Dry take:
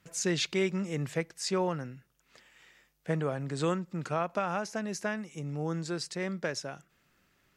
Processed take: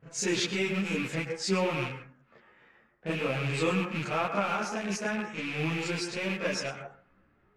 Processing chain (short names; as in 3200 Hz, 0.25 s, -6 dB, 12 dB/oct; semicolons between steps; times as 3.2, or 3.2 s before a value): rattling part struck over -43 dBFS, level -26 dBFS; in parallel at +2 dB: compressor 4:1, threshold -39 dBFS, peak gain reduction 13.5 dB; on the sum: low-pass opened by the level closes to 1200 Hz, open at -25.5 dBFS; reverse echo 31 ms -5.5 dB; on a send at -6.5 dB: reverb RT60 0.45 s, pre-delay 97 ms; on the sum: ensemble effect